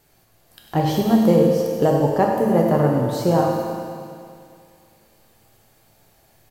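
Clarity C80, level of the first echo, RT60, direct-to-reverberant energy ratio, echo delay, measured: 1.5 dB, −10.0 dB, 2.3 s, −1.5 dB, 99 ms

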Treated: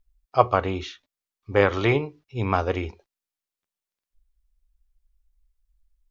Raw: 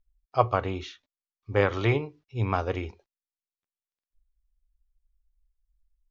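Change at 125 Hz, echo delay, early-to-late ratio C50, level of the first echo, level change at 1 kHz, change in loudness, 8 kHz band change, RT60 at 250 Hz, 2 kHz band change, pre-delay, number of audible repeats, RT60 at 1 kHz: +0.5 dB, no echo audible, no reverb audible, no echo audible, +4.5 dB, +4.0 dB, can't be measured, no reverb audible, +4.5 dB, no reverb audible, no echo audible, no reverb audible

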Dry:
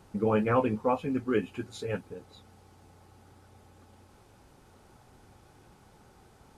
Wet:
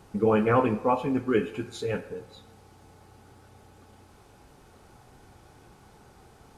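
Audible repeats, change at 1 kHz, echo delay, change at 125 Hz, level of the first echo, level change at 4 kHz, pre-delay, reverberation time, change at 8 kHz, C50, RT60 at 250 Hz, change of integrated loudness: no echo audible, +4.0 dB, no echo audible, +2.5 dB, no echo audible, +4.0 dB, 3 ms, 0.80 s, +3.5 dB, 13.0 dB, 1.1 s, +3.5 dB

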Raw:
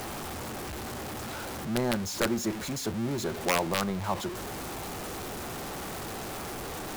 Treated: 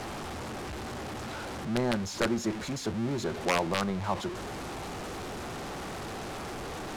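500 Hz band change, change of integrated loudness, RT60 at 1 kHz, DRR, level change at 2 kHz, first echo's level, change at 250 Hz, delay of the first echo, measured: 0.0 dB, −1.0 dB, no reverb audible, no reverb audible, −0.5 dB, no echo audible, 0.0 dB, no echo audible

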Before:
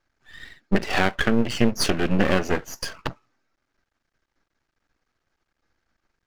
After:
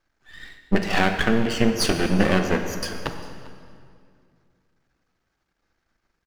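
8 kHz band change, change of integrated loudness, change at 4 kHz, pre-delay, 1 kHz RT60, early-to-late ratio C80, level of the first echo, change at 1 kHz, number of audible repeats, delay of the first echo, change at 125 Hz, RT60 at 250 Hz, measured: +1.0 dB, +1.0 dB, +1.0 dB, 3 ms, 2.2 s, 8.0 dB, −20.5 dB, +1.5 dB, 1, 398 ms, +1.5 dB, 2.6 s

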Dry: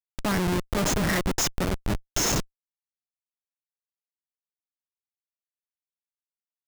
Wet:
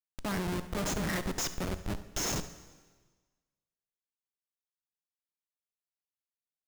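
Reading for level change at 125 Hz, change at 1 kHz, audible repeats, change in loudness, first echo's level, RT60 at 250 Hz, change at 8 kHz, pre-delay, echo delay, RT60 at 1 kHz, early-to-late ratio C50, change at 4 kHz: −8.0 dB, −8.0 dB, 1, −8.0 dB, −15.5 dB, 1.5 s, −8.0 dB, 5 ms, 70 ms, 1.4 s, 11.5 dB, −8.0 dB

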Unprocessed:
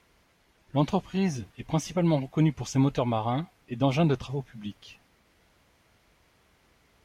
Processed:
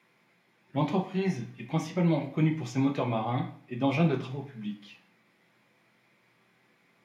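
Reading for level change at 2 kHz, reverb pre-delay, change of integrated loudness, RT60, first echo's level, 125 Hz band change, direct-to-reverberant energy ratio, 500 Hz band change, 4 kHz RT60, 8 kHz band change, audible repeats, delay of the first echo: +1.5 dB, 3 ms, −2.0 dB, 0.55 s, no echo audible, −2.5 dB, 1.0 dB, −2.5 dB, 0.45 s, −8.5 dB, no echo audible, no echo audible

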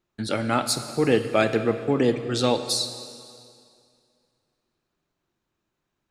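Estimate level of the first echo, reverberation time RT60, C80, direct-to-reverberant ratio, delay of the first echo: no echo audible, 2.3 s, 11.0 dB, 9.0 dB, no echo audible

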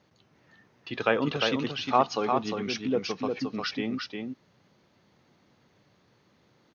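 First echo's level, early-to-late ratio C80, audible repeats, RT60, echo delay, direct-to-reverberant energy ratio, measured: −4.5 dB, no reverb audible, 1, no reverb audible, 353 ms, no reverb audible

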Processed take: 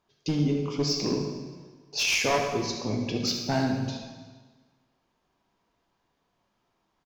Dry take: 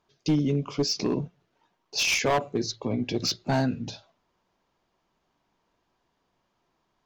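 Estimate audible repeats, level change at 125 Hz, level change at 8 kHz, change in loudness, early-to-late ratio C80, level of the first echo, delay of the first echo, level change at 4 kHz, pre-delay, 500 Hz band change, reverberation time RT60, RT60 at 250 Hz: 1, −0.5 dB, −0.5 dB, −0.5 dB, 6.0 dB, −11.0 dB, 75 ms, 0.0 dB, 6 ms, −0.5 dB, 1.4 s, 1.4 s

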